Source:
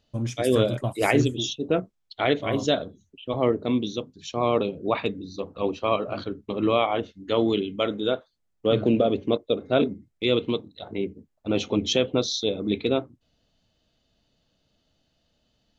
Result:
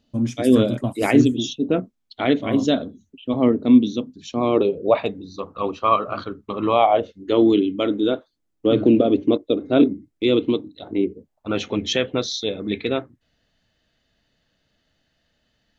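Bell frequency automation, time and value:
bell +12.5 dB 0.61 oct
4.37 s 250 Hz
5.43 s 1200 Hz
6.54 s 1200 Hz
7.43 s 300 Hz
11.03 s 300 Hz
11.63 s 1800 Hz

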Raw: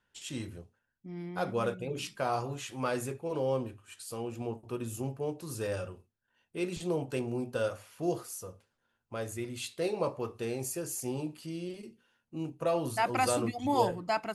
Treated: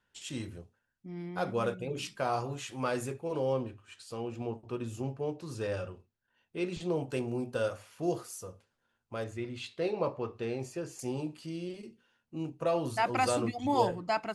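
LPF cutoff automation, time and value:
10000 Hz
from 3.53 s 5600 Hz
from 6.96 s 10000 Hz
from 9.24 s 4000 Hz
from 10.99 s 8000 Hz

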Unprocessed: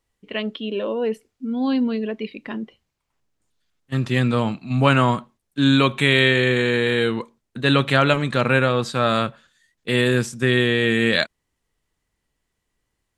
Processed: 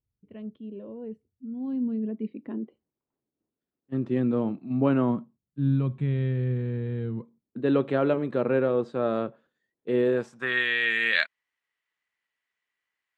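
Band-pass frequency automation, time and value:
band-pass, Q 1.6
1.55 s 100 Hz
2.59 s 320 Hz
5.02 s 320 Hz
5.61 s 110 Hz
7.09 s 110 Hz
7.7 s 390 Hz
10.01 s 390 Hz
10.66 s 2000 Hz

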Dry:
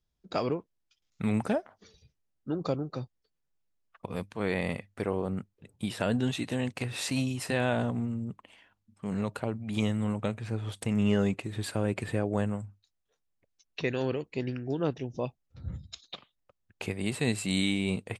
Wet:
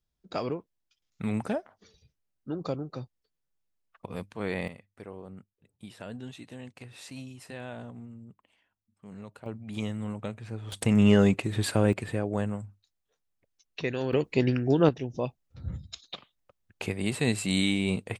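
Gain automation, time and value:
-2 dB
from 4.68 s -12.5 dB
from 9.46 s -4.5 dB
from 10.72 s +6 dB
from 11.93 s -0.5 dB
from 14.13 s +8.5 dB
from 14.89 s +2 dB

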